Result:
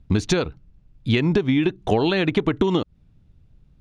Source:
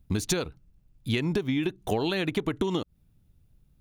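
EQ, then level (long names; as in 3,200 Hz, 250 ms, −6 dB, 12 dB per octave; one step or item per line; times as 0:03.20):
high-frequency loss of the air 120 metres
+8.0 dB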